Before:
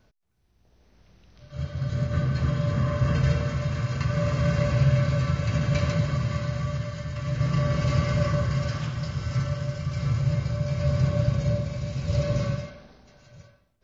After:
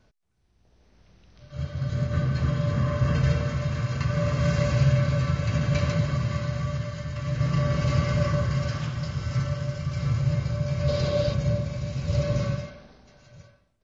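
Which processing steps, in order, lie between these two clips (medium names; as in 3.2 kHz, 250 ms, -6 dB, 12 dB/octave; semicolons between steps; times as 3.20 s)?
4.41–4.93 s: treble shelf 5.3 kHz +7 dB; resampled via 22.05 kHz; 10.88–11.34 s: graphic EQ 125/500/4000 Hz -6/+8/+11 dB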